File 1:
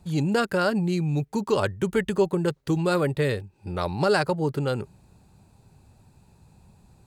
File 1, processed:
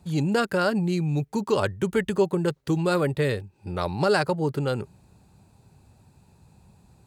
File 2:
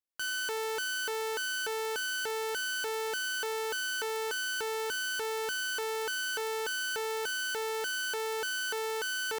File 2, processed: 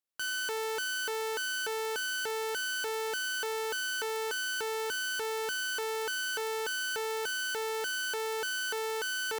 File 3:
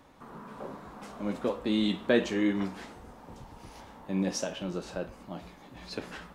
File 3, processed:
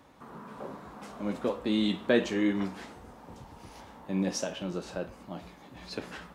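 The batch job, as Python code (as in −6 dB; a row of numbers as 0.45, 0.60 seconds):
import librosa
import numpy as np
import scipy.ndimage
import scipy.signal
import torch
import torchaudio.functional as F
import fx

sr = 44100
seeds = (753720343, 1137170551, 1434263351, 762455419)

y = scipy.signal.sosfilt(scipy.signal.butter(2, 46.0, 'highpass', fs=sr, output='sos'), x)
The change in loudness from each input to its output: 0.0, 0.0, 0.0 LU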